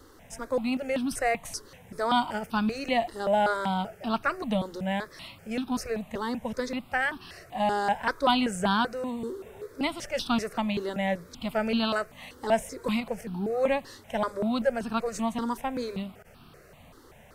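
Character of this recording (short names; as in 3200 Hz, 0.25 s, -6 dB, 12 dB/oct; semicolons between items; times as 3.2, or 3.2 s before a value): notches that jump at a steady rate 5.2 Hz 660–2000 Hz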